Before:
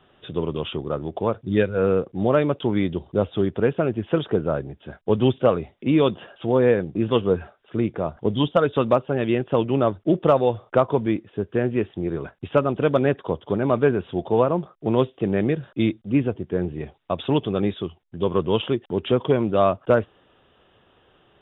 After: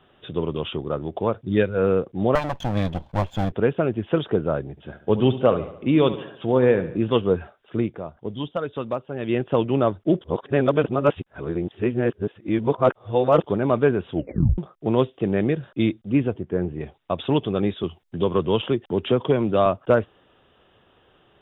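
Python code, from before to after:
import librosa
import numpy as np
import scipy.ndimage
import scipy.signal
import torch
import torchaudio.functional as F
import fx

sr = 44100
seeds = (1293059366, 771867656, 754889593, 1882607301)

y = fx.lower_of_two(x, sr, delay_ms=1.2, at=(2.35, 3.52))
y = fx.echo_feedback(y, sr, ms=71, feedback_pct=53, wet_db=-13.5, at=(4.7, 6.97))
y = fx.lowpass(y, sr, hz=2400.0, slope=12, at=(16.4, 16.81))
y = fx.band_squash(y, sr, depth_pct=40, at=(17.83, 19.66))
y = fx.edit(y, sr, fx.fade_down_up(start_s=7.8, length_s=1.57, db=-8.5, fade_s=0.3, curve='qua'),
    fx.reverse_span(start_s=10.21, length_s=3.23),
    fx.tape_stop(start_s=14.14, length_s=0.44), tone=tone)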